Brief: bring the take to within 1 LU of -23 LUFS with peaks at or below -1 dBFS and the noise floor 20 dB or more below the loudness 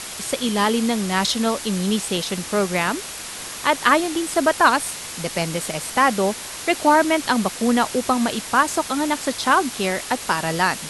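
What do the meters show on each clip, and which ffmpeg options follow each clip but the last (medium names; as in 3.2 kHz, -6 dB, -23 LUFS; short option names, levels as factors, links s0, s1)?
noise floor -33 dBFS; noise floor target -41 dBFS; loudness -20.5 LUFS; peak level -1.0 dBFS; loudness target -23.0 LUFS
-> -af "afftdn=nr=8:nf=-33"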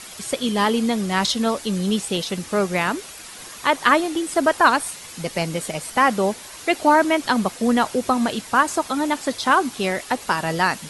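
noise floor -39 dBFS; noise floor target -41 dBFS
-> -af "afftdn=nr=6:nf=-39"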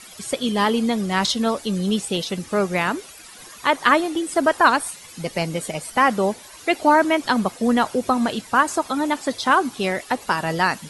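noise floor -43 dBFS; loudness -21.0 LUFS; peak level -1.5 dBFS; loudness target -23.0 LUFS
-> -af "volume=0.794"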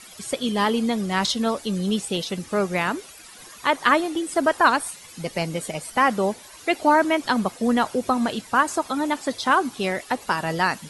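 loudness -23.0 LUFS; peak level -3.5 dBFS; noise floor -45 dBFS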